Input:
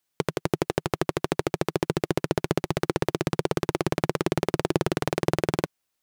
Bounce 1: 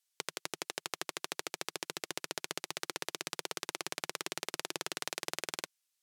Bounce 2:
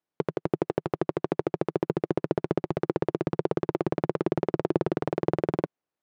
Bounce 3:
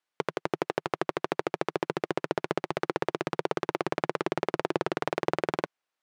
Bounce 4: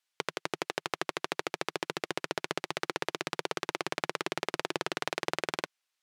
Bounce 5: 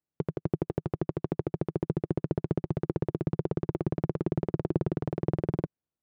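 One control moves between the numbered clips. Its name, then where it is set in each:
resonant band-pass, frequency: 7,200, 370, 1,100, 2,800, 120 Hertz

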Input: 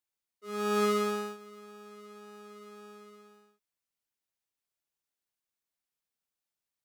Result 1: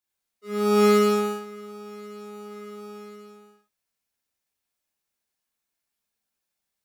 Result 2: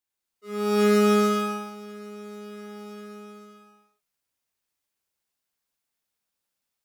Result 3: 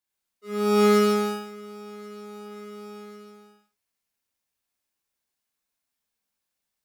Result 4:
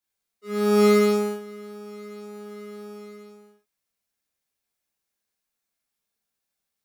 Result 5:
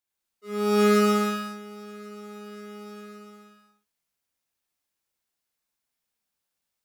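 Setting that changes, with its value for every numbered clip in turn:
reverb whose tail is shaped and stops, gate: 130, 450, 190, 90, 290 milliseconds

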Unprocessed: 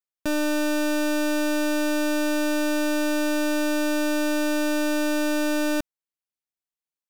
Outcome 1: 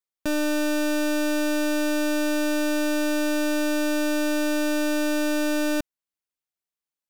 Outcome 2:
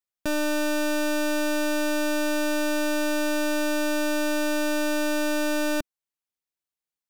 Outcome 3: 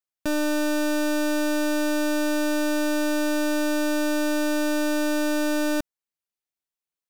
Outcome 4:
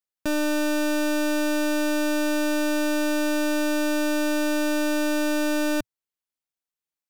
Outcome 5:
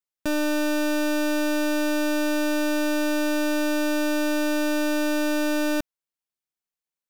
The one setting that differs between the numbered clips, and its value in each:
dynamic equaliser, frequency: 1,000, 290, 2,600, 110, 7,900 Hertz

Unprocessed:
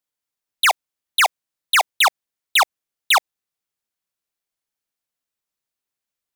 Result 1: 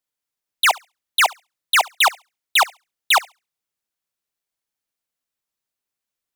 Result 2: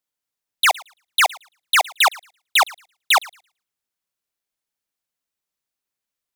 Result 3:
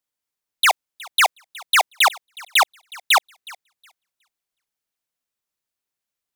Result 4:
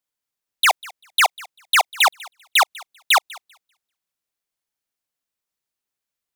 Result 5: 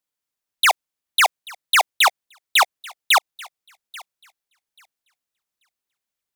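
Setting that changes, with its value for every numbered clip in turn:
feedback echo with a high-pass in the loop, delay time: 69, 112, 366, 196, 836 milliseconds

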